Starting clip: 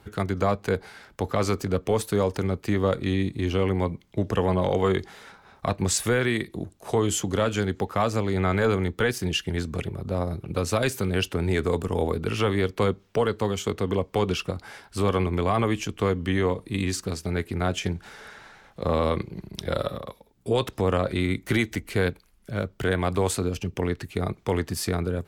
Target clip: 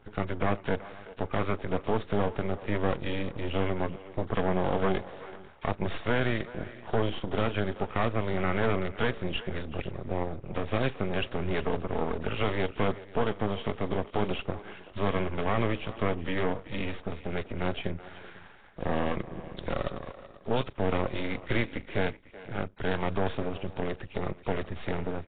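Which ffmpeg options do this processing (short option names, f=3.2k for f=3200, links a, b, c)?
-filter_complex "[0:a]asplit=2[a][b];[b]aecho=0:1:497:0.0841[c];[a][c]amix=inputs=2:normalize=0,aeval=exprs='max(val(0),0)':c=same,asplit=2[d][e];[e]adelay=380,highpass=300,lowpass=3.4k,asoftclip=type=hard:threshold=-22.5dB,volume=-15dB[f];[d][f]amix=inputs=2:normalize=0" -ar 8000 -c:a nellymoser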